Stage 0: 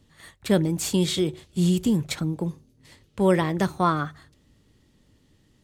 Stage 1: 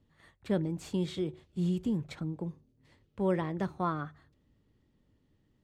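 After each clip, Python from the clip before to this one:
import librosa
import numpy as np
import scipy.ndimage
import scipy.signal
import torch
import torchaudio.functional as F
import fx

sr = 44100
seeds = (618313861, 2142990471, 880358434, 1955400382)

y = fx.lowpass(x, sr, hz=1700.0, slope=6)
y = y * librosa.db_to_amplitude(-9.0)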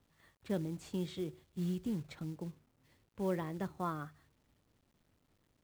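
y = fx.quant_companded(x, sr, bits=6)
y = y * librosa.db_to_amplitude(-6.0)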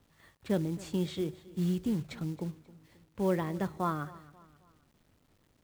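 y = fx.echo_feedback(x, sr, ms=268, feedback_pct=43, wet_db=-20)
y = y * librosa.db_to_amplitude(6.0)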